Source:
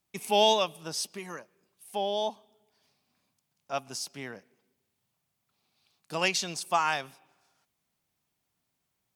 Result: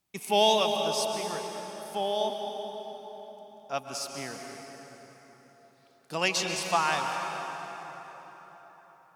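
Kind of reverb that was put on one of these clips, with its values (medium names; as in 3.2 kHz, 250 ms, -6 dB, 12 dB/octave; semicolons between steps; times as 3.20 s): plate-style reverb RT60 4.5 s, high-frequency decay 0.65×, pre-delay 115 ms, DRR 3 dB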